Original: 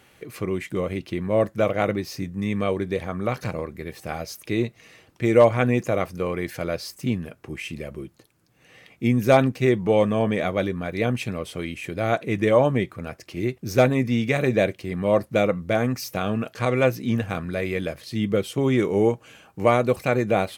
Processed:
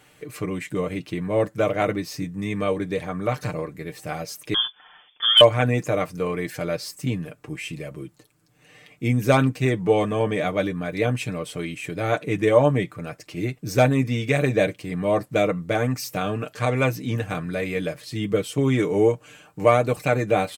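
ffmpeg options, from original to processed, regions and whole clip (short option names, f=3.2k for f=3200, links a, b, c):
-filter_complex "[0:a]asettb=1/sr,asplit=3[a][b][c];[a]atrim=end=4.544[d];[b]atrim=start=4.54:end=5.41,asetpts=PTS-STARTPTS,afade=t=in:d=0.004:c=qsin,afade=t=out:st=0.866:d=0.004:c=qsin,lowpass=f=3.1k:t=q:w=0.5098,lowpass=f=3.1k:t=q:w=0.6013,lowpass=f=3.1k:t=q:w=0.9,lowpass=f=3.1k:t=q:w=2.563,afreqshift=-3600,asoftclip=type=hard:threshold=-7dB[e];[c]atrim=start=5.406[f];[d][e]acrossfade=d=0.004:c1=hsin:c2=qsin[g];[g][f]acrossfade=d=0.004:c1=qsin:c2=hsin,equalizer=f=7.9k:w=3.6:g=6,aecho=1:1:6.7:0.61,volume=-1dB"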